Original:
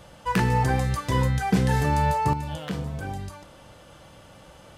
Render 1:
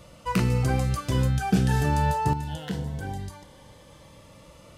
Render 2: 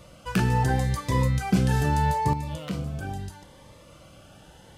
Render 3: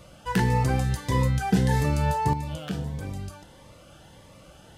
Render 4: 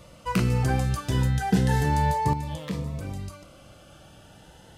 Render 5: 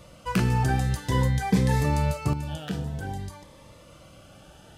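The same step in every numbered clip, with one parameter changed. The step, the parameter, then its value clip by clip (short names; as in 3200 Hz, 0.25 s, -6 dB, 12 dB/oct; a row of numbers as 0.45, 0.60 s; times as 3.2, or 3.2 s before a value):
cascading phaser, rate: 0.21, 0.77, 1.6, 0.33, 0.52 Hz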